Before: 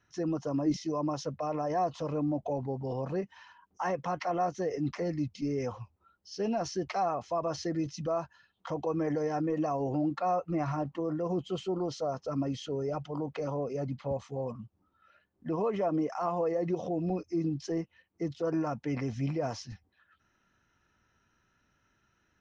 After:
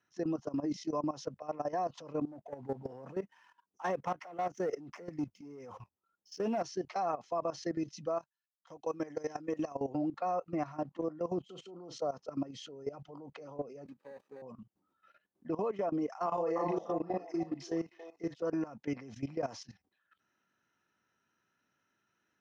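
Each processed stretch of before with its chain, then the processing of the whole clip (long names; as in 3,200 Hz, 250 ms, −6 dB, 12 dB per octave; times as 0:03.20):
0:02.25–0:06.62: parametric band 4,000 Hz −13 dB 0.39 octaves + leveller curve on the samples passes 1 + shaped tremolo saw up 1.6 Hz, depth 65%
0:08.19–0:09.75: high-shelf EQ 2,800 Hz +12 dB + notch filter 4,600 Hz + expander for the loud parts 2.5 to 1, over −50 dBFS
0:11.45–0:12.01: notch filter 4,800 Hz, Q 20 + downward compressor 1.5 to 1, threshold −45 dBFS + double-tracking delay 40 ms −12.5 dB
0:13.85–0:14.42: running median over 41 samples + high-pass filter 310 Hz + notch comb filter 700 Hz
0:16.26–0:18.35: low-shelf EQ 210 Hz −6.5 dB + double-tracking delay 36 ms −2 dB + echo through a band-pass that steps 297 ms, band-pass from 900 Hz, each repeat 0.7 octaves, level −1 dB
whole clip: high-pass filter 180 Hz 12 dB per octave; output level in coarse steps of 16 dB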